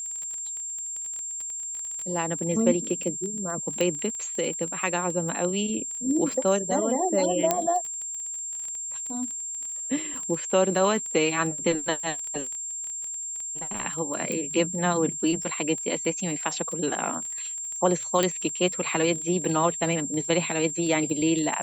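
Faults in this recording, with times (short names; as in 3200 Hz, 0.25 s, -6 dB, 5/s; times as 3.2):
crackle 19/s -31 dBFS
tone 7400 Hz -31 dBFS
3.81 pop -13 dBFS
7.51 pop -6 dBFS
14.32 pop -16 dBFS
18.23 pop -8 dBFS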